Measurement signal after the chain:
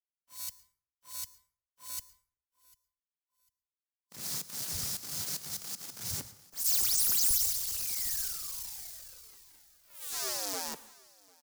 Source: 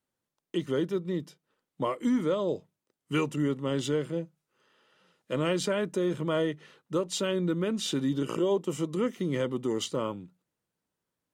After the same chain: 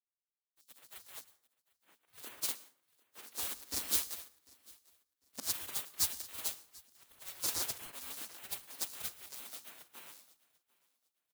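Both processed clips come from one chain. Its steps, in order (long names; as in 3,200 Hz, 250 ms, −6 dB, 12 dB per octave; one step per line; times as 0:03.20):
each half-wave held at its own peak
elliptic band-stop filter 100–5,000 Hz, stop band 50 dB
comb filter 4.9 ms, depth 53%
volume swells 168 ms
in parallel at −4.5 dB: bit-depth reduction 6 bits, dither none
on the sum: soft clipping −13 dBFS
gate on every frequency bin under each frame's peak −20 dB weak
on a send: repeating echo 748 ms, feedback 52%, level −13 dB
on the sum: dense smooth reverb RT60 0.88 s, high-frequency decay 0.5×, pre-delay 100 ms, DRR 15 dB
multiband upward and downward expander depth 100%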